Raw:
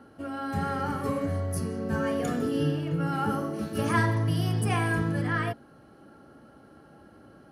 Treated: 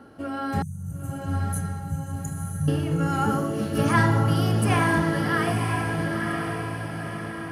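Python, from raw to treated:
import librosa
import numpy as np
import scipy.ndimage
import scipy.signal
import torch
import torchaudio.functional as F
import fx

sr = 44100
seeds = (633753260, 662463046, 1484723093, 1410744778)

y = fx.brickwall_bandstop(x, sr, low_hz=190.0, high_hz=5900.0, at=(0.62, 2.68))
y = fx.echo_diffused(y, sr, ms=966, feedback_pct=51, wet_db=-3.5)
y = y * librosa.db_to_amplitude(4.0)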